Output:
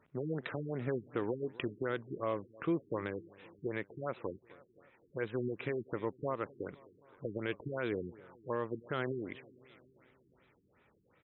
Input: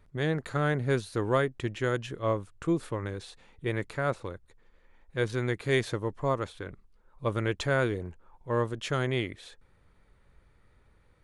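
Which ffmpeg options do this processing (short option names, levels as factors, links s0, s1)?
-filter_complex "[0:a]highpass=180,lowpass=6600,equalizer=f=2600:w=2.3:g=5.5,alimiter=limit=0.0668:level=0:latency=1:release=164,asplit=2[s0][s1];[s1]aecho=0:1:260|520|780|1040|1300:0.0891|0.0535|0.0321|0.0193|0.0116[s2];[s0][s2]amix=inputs=2:normalize=0,afftfilt=real='re*lt(b*sr/1024,410*pow(4100/410,0.5+0.5*sin(2*PI*2.7*pts/sr)))':imag='im*lt(b*sr/1024,410*pow(4100/410,0.5+0.5*sin(2*PI*2.7*pts/sr)))':win_size=1024:overlap=0.75"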